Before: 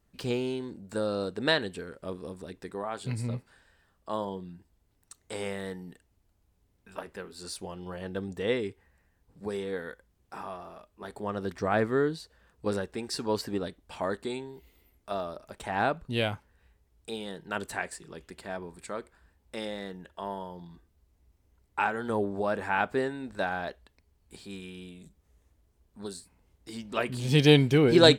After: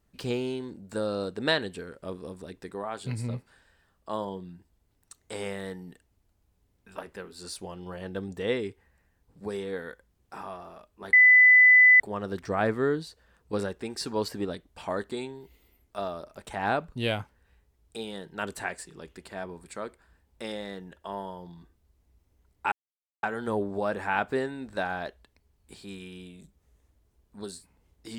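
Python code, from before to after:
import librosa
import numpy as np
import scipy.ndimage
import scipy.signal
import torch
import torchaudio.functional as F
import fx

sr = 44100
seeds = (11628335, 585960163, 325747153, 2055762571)

y = fx.edit(x, sr, fx.insert_tone(at_s=11.13, length_s=0.87, hz=2000.0, db=-12.5),
    fx.insert_silence(at_s=21.85, length_s=0.51), tone=tone)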